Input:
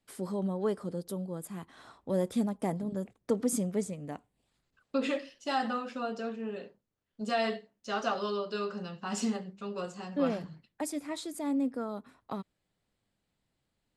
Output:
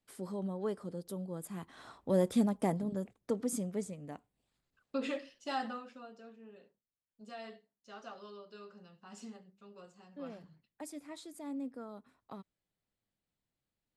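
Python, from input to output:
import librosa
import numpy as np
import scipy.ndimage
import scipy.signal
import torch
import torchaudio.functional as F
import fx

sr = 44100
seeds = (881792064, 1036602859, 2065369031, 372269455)

y = fx.gain(x, sr, db=fx.line((0.99, -5.5), (1.94, 1.0), (2.6, 1.0), (3.4, -5.5), (5.59, -5.5), (6.11, -17.0), (10.11, -17.0), (10.88, -10.0)))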